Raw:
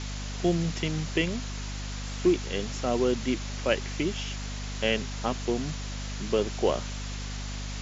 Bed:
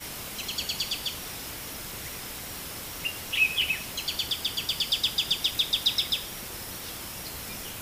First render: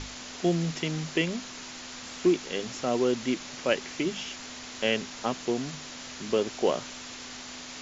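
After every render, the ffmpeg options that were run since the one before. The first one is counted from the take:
-af "bandreject=f=50:t=h:w=6,bandreject=f=100:t=h:w=6,bandreject=f=150:t=h:w=6,bandreject=f=200:t=h:w=6"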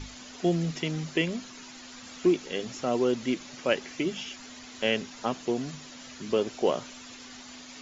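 -af "afftdn=nr=9:nf=-42"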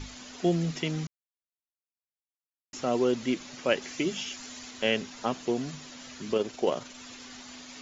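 -filter_complex "[0:a]asettb=1/sr,asplit=3[s0][s1][s2];[s0]atrim=end=3.824[s3];[s1]atrim=start=3.82:end=4.71,asetpts=PTS-STARTPTS,afade=t=in:d=0.004:c=qsin,afade=t=out:st=0.886:d=0.004:c=qsin,highshelf=f=6200:g=9.5[s4];[s2]atrim=start=4.706[s5];[s3][s4]acrossfade=d=0.004:c1=hsin:c2=qsin[s6];[s6][s5]acrossfade=d=0.004:c1=qsin:c2=hsin,asplit=3[s7][s8][s9];[s7]afade=t=out:st=6.33:d=0.02[s10];[s8]tremolo=f=22:d=0.4,afade=t=in:st=6.33:d=0.02,afade=t=out:st=6.97:d=0.02[s11];[s9]afade=t=in:st=6.97:d=0.02[s12];[s10][s11][s12]amix=inputs=3:normalize=0,asplit=3[s13][s14][s15];[s13]atrim=end=1.07,asetpts=PTS-STARTPTS,afade=t=out:st=1.066:d=0.004:c=hsin[s16];[s14]atrim=start=1.07:end=2.73,asetpts=PTS-STARTPTS,volume=0[s17];[s15]atrim=start=2.73,asetpts=PTS-STARTPTS,afade=t=in:d=0.004:c=hsin[s18];[s16][s17][s18]concat=n=3:v=0:a=1"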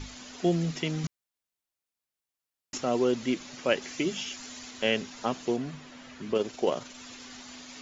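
-filter_complex "[0:a]asettb=1/sr,asplit=3[s0][s1][s2];[s0]atrim=end=1.044[s3];[s1]atrim=start=1.04:end=2.78,asetpts=PTS-STARTPTS,afade=t=in:d=0.004:c=qsin,afade=t=out:st=1.736:d=0.004:c=qsin,acontrast=51[s4];[s2]atrim=start=2.776[s5];[s3][s4]acrossfade=d=0.004:c1=hsin:c2=qsin[s6];[s6][s5]acrossfade=d=0.004:c1=qsin:c2=hsin,asettb=1/sr,asplit=3[s7][s8][s9];[s7]atrim=end=5.564[s10];[s8]atrim=start=5.56:end=6.35,asetpts=PTS-STARTPTS,afade=t=in:d=0.004:c=qsin,afade=t=out:st=0.786:d=0.004:c=qsin,acrossover=split=3100[s11][s12];[s12]acompressor=threshold=0.00126:ratio=4:attack=1:release=60[s13];[s11][s13]amix=inputs=2:normalize=0[s14];[s9]atrim=start=6.346[s15];[s10][s14]acrossfade=d=0.004:c1=hsin:c2=qsin[s16];[s16][s15]acrossfade=d=0.004:c1=qsin:c2=hsin"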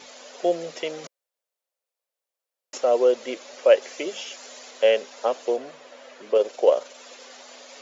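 -af "highpass=f=530:t=q:w=4.9"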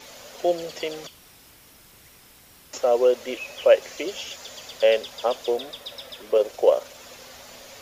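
-filter_complex "[1:a]volume=0.211[s0];[0:a][s0]amix=inputs=2:normalize=0"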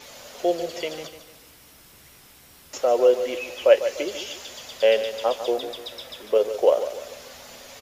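-filter_complex "[0:a]asplit=2[s0][s1];[s1]adelay=14,volume=0.237[s2];[s0][s2]amix=inputs=2:normalize=0,aecho=1:1:148|296|444|592:0.282|0.116|0.0474|0.0194"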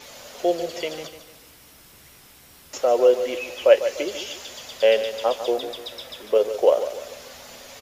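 -af "volume=1.12"

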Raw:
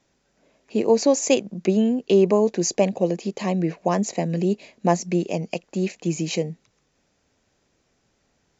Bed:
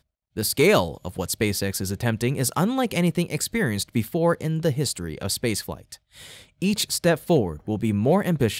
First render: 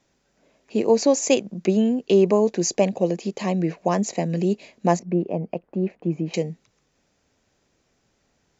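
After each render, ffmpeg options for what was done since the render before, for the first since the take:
-filter_complex "[0:a]asettb=1/sr,asplit=3[s0][s1][s2];[s0]atrim=end=4.994[s3];[s1]atrim=start=4.99:end=6.34,asetpts=PTS-STARTPTS,afade=t=in:d=0.004:c=qsin,afade=t=out:st=1.346:d=0.004:c=qsin,lowpass=1200[s4];[s2]atrim=start=6.336[s5];[s3][s4]acrossfade=d=0.004:c1=hsin:c2=qsin[s6];[s6][s5]acrossfade=d=0.004:c1=qsin:c2=hsin"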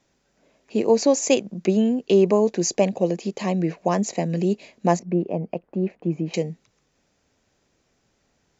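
-af anull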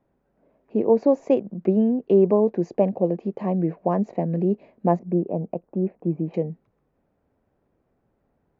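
-af "lowpass=1000"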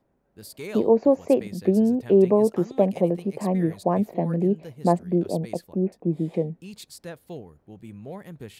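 -filter_complex "[1:a]volume=0.119[s0];[0:a][s0]amix=inputs=2:normalize=0"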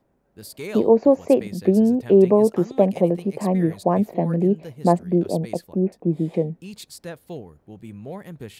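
-af "volume=1.41"

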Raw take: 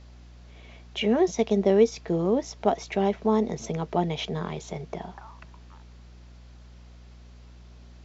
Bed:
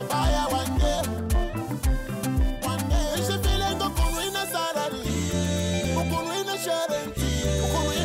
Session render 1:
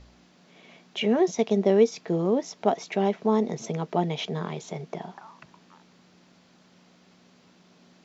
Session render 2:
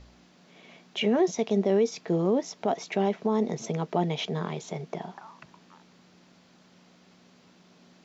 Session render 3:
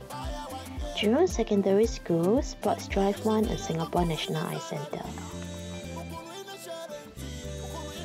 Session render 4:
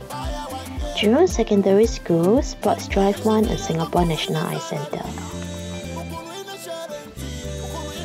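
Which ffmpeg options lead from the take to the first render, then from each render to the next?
-af "bandreject=f=60:t=h:w=4,bandreject=f=120:t=h:w=4"
-af "alimiter=limit=0.168:level=0:latency=1:release=24"
-filter_complex "[1:a]volume=0.224[s0];[0:a][s0]amix=inputs=2:normalize=0"
-af "volume=2.37"

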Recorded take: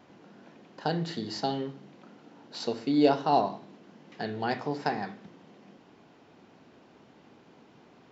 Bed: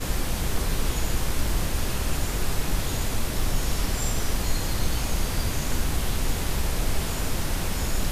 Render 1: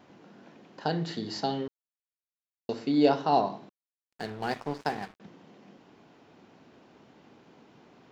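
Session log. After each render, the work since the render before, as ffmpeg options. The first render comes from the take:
-filter_complex "[0:a]asettb=1/sr,asplit=3[s0][s1][s2];[s0]atrim=end=3.694[s3];[s1]atrim=start=3.69:end=5.2,asetpts=PTS-STARTPTS,afade=t=in:d=0.004:c=qsin,afade=t=out:st=1.506:d=0.004:c=qsin,aeval=exprs='sgn(val(0))*max(abs(val(0))-0.00944,0)':c=same[s4];[s2]atrim=start=5.196[s5];[s3][s4]acrossfade=d=0.004:c1=hsin:c2=qsin[s6];[s6][s5]acrossfade=d=0.004:c1=qsin:c2=hsin,asplit=3[s7][s8][s9];[s7]atrim=end=1.68,asetpts=PTS-STARTPTS,afade=t=out:st=1.676:d=0.004:c=hsin[s10];[s8]atrim=start=1.68:end=2.69,asetpts=PTS-STARTPTS,volume=0[s11];[s9]atrim=start=2.69,asetpts=PTS-STARTPTS,afade=t=in:d=0.004:c=hsin[s12];[s10][s11][s12]concat=n=3:v=0:a=1"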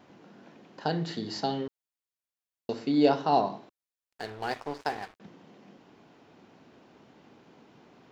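-filter_complex "[0:a]asettb=1/sr,asplit=3[s0][s1][s2];[s0]atrim=end=3.614[s3];[s1]atrim=start=3.61:end=5.19,asetpts=PTS-STARTPTS,afade=t=in:d=0.004:c=qsin,afade=t=out:st=1.576:d=0.004:c=qsin,equalizer=f=180:w=1.5:g=-11.5[s4];[s2]atrim=start=5.186[s5];[s3][s4]acrossfade=d=0.004:c1=hsin:c2=qsin[s6];[s6][s5]acrossfade=d=0.004:c1=qsin:c2=hsin"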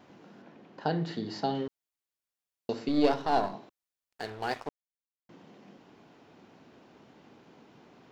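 -filter_complex "[0:a]asettb=1/sr,asplit=3[s0][s1][s2];[s0]atrim=end=0.424[s3];[s1]atrim=start=0.42:end=1.55,asetpts=PTS-STARTPTS,afade=t=in:d=0.004:c=qsin,afade=t=out:st=1.126:d=0.004:c=qsin,lowpass=f=2800:p=1[s4];[s2]atrim=start=1.546[s5];[s3][s4]acrossfade=d=0.004:c1=hsin:c2=qsin[s6];[s6][s5]acrossfade=d=0.004:c1=qsin:c2=hsin,asettb=1/sr,asplit=3[s7][s8][s9];[s7]atrim=end=2.884[s10];[s8]atrim=start=2.88:end=3.54,asetpts=PTS-STARTPTS,afade=t=in:d=0.004:c=qsin,afade=t=out:st=0.656:d=0.004:c=qsin,aeval=exprs='if(lt(val(0),0),0.447*val(0),val(0))':c=same[s11];[s9]atrim=start=3.536[s12];[s10][s11]acrossfade=d=0.004:c1=hsin:c2=qsin[s13];[s13][s12]acrossfade=d=0.004:c1=qsin:c2=hsin,asplit=3[s14][s15][s16];[s14]atrim=end=4.69,asetpts=PTS-STARTPTS,afade=t=out:st=4.686:d=0.004:c=hsin[s17];[s15]atrim=start=4.69:end=5.29,asetpts=PTS-STARTPTS,volume=0[s18];[s16]atrim=start=5.29,asetpts=PTS-STARTPTS,afade=t=in:d=0.004:c=hsin[s19];[s17][s18][s19]concat=n=3:v=0:a=1"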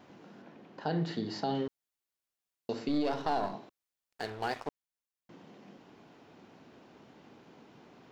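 -af "alimiter=limit=0.0841:level=0:latency=1:release=70"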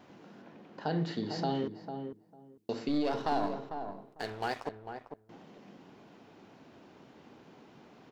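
-filter_complex "[0:a]asplit=2[s0][s1];[s1]adelay=449,lowpass=f=980:p=1,volume=0.473,asplit=2[s2][s3];[s3]adelay=449,lowpass=f=980:p=1,volume=0.18,asplit=2[s4][s5];[s5]adelay=449,lowpass=f=980:p=1,volume=0.18[s6];[s0][s2][s4][s6]amix=inputs=4:normalize=0"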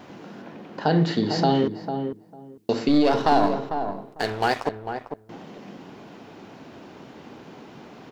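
-af "volume=3.98"

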